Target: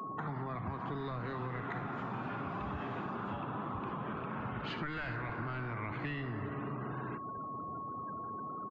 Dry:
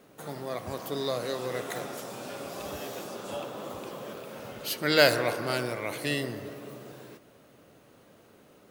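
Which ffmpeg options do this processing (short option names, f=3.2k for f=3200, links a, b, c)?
-filter_complex "[0:a]acrossover=split=1200[a][b];[a]asoftclip=type=tanh:threshold=-27dB[c];[b]aecho=1:1:59|69:0.178|0.237[d];[c][d]amix=inputs=2:normalize=0,afftfilt=real='re*gte(hypot(re,im),0.00282)':imag='im*gte(hypot(re,im),0.00282)':win_size=1024:overlap=0.75,aeval=exprs='val(0)+0.00112*sin(2*PI*1100*n/s)':c=same,aresample=16000,asoftclip=type=hard:threshold=-23dB,aresample=44100,firequalizer=gain_entry='entry(350,0);entry(1000,9);entry(5700,-29)':delay=0.05:min_phase=1,acrossover=split=110|250[e][f][g];[e]acompressor=threshold=-53dB:ratio=4[h];[f]acompressor=threshold=-53dB:ratio=4[i];[g]acompressor=threshold=-49dB:ratio=4[j];[h][i][j]amix=inputs=3:normalize=0,equalizer=f=550:w=2.4:g=-13,acompressor=threshold=-48dB:ratio=6,volume=13dB"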